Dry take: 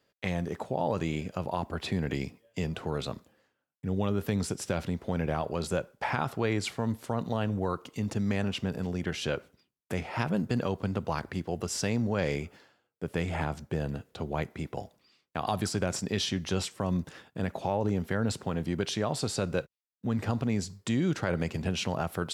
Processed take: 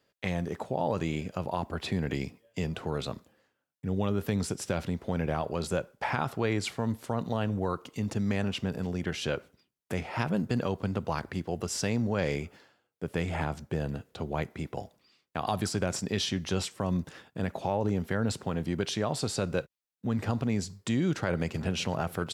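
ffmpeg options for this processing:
-filter_complex "[0:a]asplit=2[a][b];[b]afade=t=in:st=21.16:d=0.01,afade=t=out:st=21.6:d=0.01,aecho=0:1:380|760|1140|1520|1900|2280|2660|3040|3420|3800|4180|4560:0.125893|0.100714|0.0805712|0.064457|0.0515656|0.0412525|0.033002|0.0264016|0.0211213|0.016897|0.0135176|0.0108141[c];[a][c]amix=inputs=2:normalize=0"

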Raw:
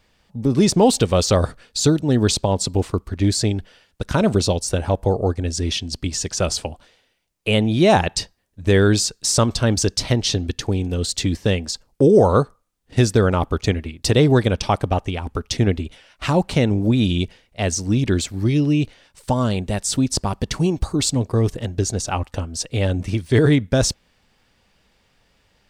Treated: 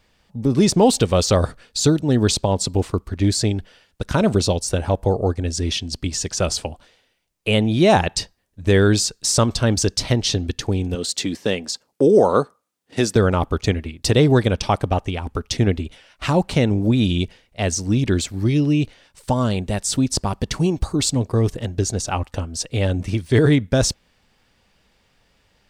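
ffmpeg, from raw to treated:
-filter_complex "[0:a]asettb=1/sr,asplit=3[a][b][c];[a]atrim=end=10.954[d];[b]atrim=start=10.95:end=13.16,asetpts=PTS-STARTPTS,afade=t=in:d=0.004:c=qsin,afade=t=out:st=2.206:d=0.004:c=qsin,highpass=210[e];[c]atrim=start=13.156[f];[d][e]acrossfade=d=0.004:c1=hsin:c2=qsin[g];[g][f]acrossfade=d=0.004:c1=qsin:c2=hsin"

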